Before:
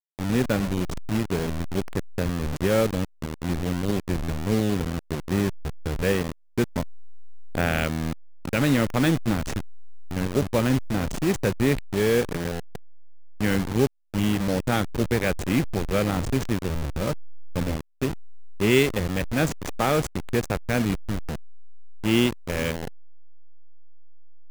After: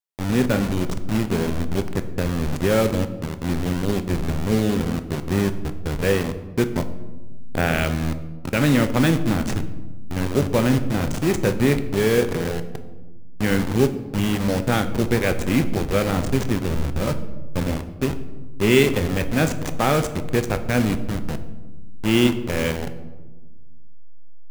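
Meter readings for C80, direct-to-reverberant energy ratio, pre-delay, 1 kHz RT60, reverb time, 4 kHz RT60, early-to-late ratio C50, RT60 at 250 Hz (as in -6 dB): 14.5 dB, 9.0 dB, 8 ms, 1.1 s, 1.2 s, 0.70 s, 12.5 dB, 2.1 s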